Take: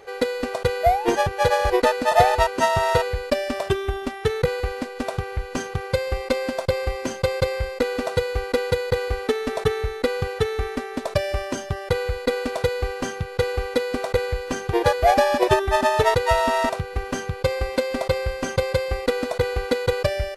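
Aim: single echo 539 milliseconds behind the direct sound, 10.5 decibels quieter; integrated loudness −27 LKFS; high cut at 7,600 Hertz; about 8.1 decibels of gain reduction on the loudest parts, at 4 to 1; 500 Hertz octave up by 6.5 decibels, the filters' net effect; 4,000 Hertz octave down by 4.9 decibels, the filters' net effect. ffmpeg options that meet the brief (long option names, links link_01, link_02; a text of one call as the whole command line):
ffmpeg -i in.wav -af "lowpass=7600,equalizer=frequency=500:width_type=o:gain=7.5,equalizer=frequency=4000:width_type=o:gain=-6,acompressor=threshold=-19dB:ratio=4,aecho=1:1:539:0.299,volume=-3.5dB" out.wav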